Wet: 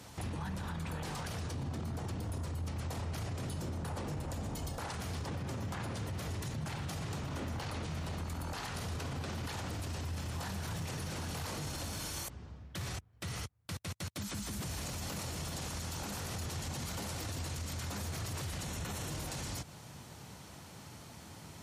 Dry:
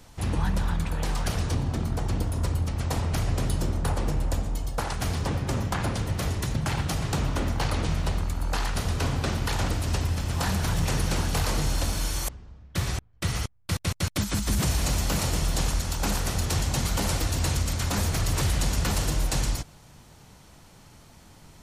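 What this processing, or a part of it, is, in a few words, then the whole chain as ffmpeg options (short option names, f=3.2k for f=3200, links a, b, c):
podcast mastering chain: -filter_complex "[0:a]asettb=1/sr,asplit=3[a][b][c];[a]atrim=end=18.644[d];[b]atrim=start=18.64:end=19.11,asetpts=PTS-STARTPTS,afade=t=in:d=0.004:c=qsin,afade=t=out:st=0.466:d=0.004:c=qsin,bandreject=f=4.8k:w=6.4[e];[c]atrim=start=19.106[f];[d][e]acrossfade=d=0.004:c1=hsin:c2=qsin[g];[g][f]acrossfade=d=0.004:c1=qsin:c2=hsin,highpass=f=72:w=0.5412,highpass=f=72:w=1.3066,acompressor=threshold=-35dB:ratio=4,alimiter=level_in=9dB:limit=-24dB:level=0:latency=1:release=16,volume=-9dB,volume=2dB" -ar 44100 -c:a libmp3lame -b:a 96k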